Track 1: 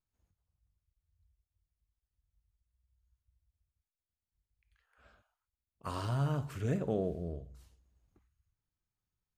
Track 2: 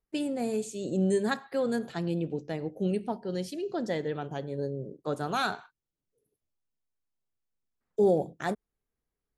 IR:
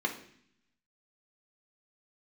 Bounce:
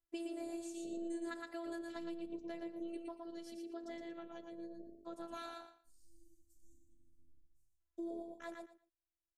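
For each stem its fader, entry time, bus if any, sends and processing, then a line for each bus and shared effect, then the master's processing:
−14.5 dB, 0.00 s, no send, echo send −8 dB, inverse Chebyshev band-stop filter 420–1,900 Hz, stop band 70 dB
0:02.73 −5 dB → 0:03.21 −12.5 dB, 0.00 s, no send, echo send −5 dB, no processing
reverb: not used
echo: repeating echo 116 ms, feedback 17%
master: phases set to zero 337 Hz; downward compressor 3 to 1, threshold −42 dBFS, peak gain reduction 10.5 dB

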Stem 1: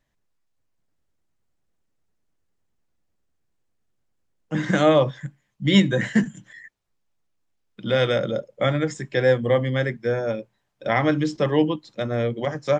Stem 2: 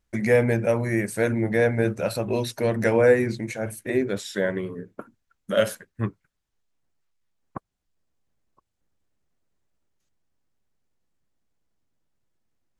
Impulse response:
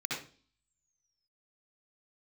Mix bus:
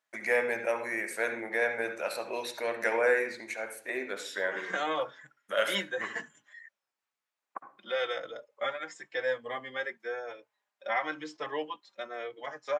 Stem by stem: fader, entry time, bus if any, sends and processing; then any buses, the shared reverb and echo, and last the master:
−0.5 dB, 0.00 s, no send, barber-pole flanger 4.2 ms −0.96 Hz
+0.5 dB, 0.00 s, send −10.5 dB, no processing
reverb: on, RT60 0.40 s, pre-delay 59 ms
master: high-pass filter 870 Hz 12 dB per octave; high-shelf EQ 2,700 Hz −10 dB

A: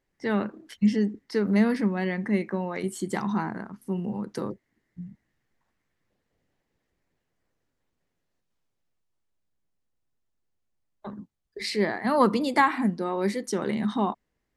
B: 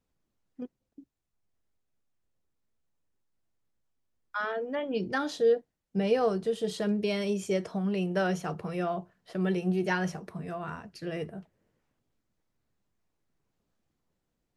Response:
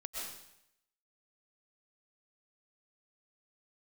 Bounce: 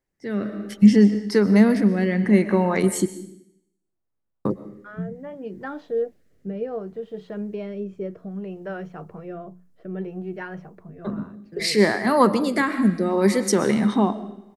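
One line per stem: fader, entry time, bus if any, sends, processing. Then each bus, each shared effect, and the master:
−2.5 dB, 0.00 s, muted 0:03.06–0:04.45, send −8.5 dB, parametric band 3,300 Hz −3.5 dB 1.1 octaves
−12.5 dB, 0.50 s, no send, low-pass filter 1,500 Hz 12 dB per octave; mains-hum notches 60/120/180 Hz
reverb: on, RT60 0.80 s, pre-delay 85 ms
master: high-shelf EQ 6,700 Hz +5 dB; automatic gain control gain up to 12 dB; rotating-speaker cabinet horn 0.65 Hz

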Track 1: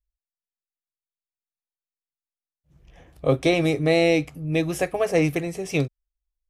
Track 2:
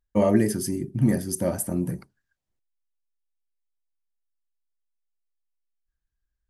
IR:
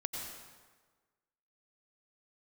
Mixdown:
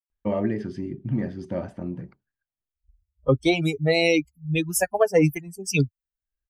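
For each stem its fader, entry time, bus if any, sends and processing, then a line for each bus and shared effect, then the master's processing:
−1.0 dB, 0.00 s, no send, spectral dynamics exaggerated over time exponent 3; automatic gain control gain up to 14.5 dB; multiband upward and downward expander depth 40%
−3.0 dB, 0.10 s, no send, low-pass filter 3,400 Hz 24 dB per octave; automatic ducking −17 dB, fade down 1.60 s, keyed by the first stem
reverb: not used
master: high-shelf EQ 9,100 Hz +9.5 dB; downward compressor 1.5 to 1, threshold −24 dBFS, peak gain reduction 6 dB

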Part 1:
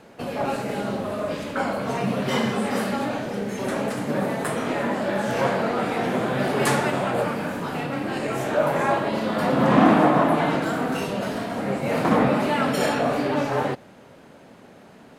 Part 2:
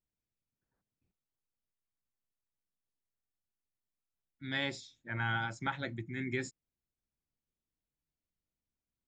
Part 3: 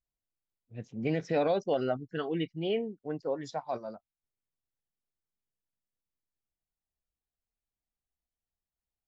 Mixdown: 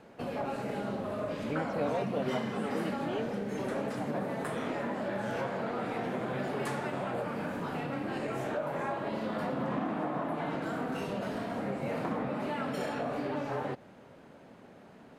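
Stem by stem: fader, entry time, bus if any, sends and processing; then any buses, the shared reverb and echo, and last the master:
−5.5 dB, 0.00 s, no send, downward compressor 6 to 1, threshold −25 dBFS, peak gain reduction 14 dB
−12.5 dB, 0.00 s, no send, no processing
−6.0 dB, 0.45 s, no send, no processing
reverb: not used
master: high-shelf EQ 3,500 Hz −7 dB

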